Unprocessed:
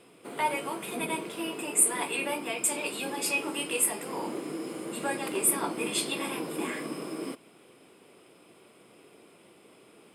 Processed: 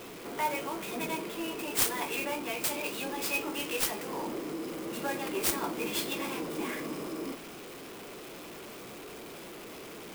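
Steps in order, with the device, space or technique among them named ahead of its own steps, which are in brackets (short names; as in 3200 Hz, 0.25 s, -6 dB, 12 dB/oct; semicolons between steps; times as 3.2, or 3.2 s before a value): early CD player with a faulty converter (zero-crossing step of -36 dBFS; clock jitter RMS 0.028 ms); reverse echo 36 ms -21.5 dB; gain -4 dB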